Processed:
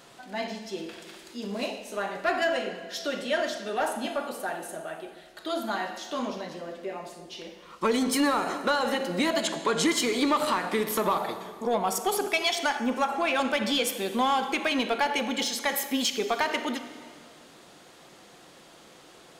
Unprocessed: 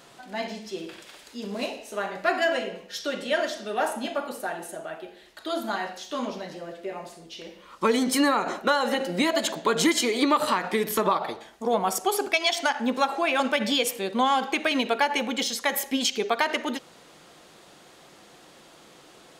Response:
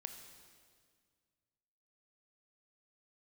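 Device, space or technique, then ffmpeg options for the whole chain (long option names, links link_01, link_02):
saturated reverb return: -filter_complex "[0:a]asplit=2[link_01][link_02];[1:a]atrim=start_sample=2205[link_03];[link_02][link_03]afir=irnorm=-1:irlink=0,asoftclip=type=tanh:threshold=-24dB,volume=7dB[link_04];[link_01][link_04]amix=inputs=2:normalize=0,asettb=1/sr,asplit=3[link_05][link_06][link_07];[link_05]atrim=end=9.424[link_08];[link_06]atrim=start=9.42:end=9.91,asetpts=PTS-STARTPTS,afade=type=in:duration=0.004:curve=qsin,afade=type=out:start_time=0.486:duration=0.004:curve=qsin,lowpass=frequency=11000:width=0.5412,lowpass=frequency=11000:width=1.3066[link_09];[link_07]atrim=start=9.906[link_10];[link_08][link_09]acrossfade=duration=0.004:curve1=hsin:curve2=qsin[link_11];[link_11][link_10]acrossfade=duration=0.004:curve1=qsin:curve2=hsin,asettb=1/sr,asplit=3[link_12][link_13][link_14];[link_12]atrim=end=12.774[link_15];[link_13]atrim=start=12.77:end=13.21,asetpts=PTS-STARTPTS,afade=type=in:duration=0.004:curve=qsin,afade=type=out:start_time=0.436:duration=0.004:curve=qsin,equalizer=frequency=4000:width_type=o:width=0.45:gain=-10[link_16];[link_14]atrim=start=13.206[link_17];[link_15][link_16]acrossfade=duration=0.004:curve1=hsin:curve2=qsin[link_18];[link_18][link_17]acrossfade=duration=0.004:curve1=qsin:curve2=hsin,volume=-8dB"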